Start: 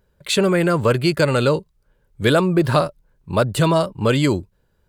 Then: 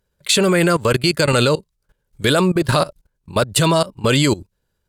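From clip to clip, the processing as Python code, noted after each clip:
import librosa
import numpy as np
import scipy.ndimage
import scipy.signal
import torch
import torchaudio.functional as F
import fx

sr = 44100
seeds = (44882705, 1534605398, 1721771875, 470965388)

y = fx.peak_eq(x, sr, hz=8100.0, db=9.0, octaves=2.9)
y = fx.level_steps(y, sr, step_db=19)
y = y * librosa.db_to_amplitude(4.5)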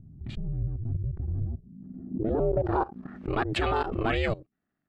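y = x * np.sin(2.0 * np.pi * 220.0 * np.arange(len(x)) / sr)
y = fx.filter_sweep_lowpass(y, sr, from_hz=110.0, to_hz=2000.0, start_s=1.49, end_s=3.25, q=1.7)
y = fx.pre_swell(y, sr, db_per_s=39.0)
y = y * librosa.db_to_amplitude(-9.0)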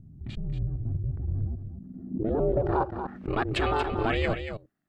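y = x + 10.0 ** (-8.5 / 20.0) * np.pad(x, (int(233 * sr / 1000.0), 0))[:len(x)]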